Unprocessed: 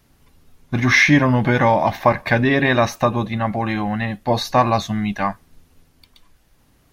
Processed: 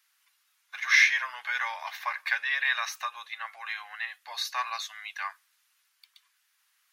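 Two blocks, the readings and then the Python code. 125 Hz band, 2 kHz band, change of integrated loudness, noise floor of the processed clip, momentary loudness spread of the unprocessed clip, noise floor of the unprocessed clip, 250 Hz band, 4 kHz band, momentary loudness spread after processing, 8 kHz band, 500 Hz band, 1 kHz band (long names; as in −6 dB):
below −40 dB, −6.0 dB, −10.5 dB, −72 dBFS, 10 LU, −58 dBFS, below −40 dB, −5.5 dB, 16 LU, −5.5 dB, −33.0 dB, −15.5 dB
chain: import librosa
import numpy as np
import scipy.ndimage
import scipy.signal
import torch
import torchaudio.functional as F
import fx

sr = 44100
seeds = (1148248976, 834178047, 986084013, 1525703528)

y = scipy.signal.sosfilt(scipy.signal.butter(4, 1300.0, 'highpass', fs=sr, output='sos'), x)
y = y * 10.0 ** (-5.5 / 20.0)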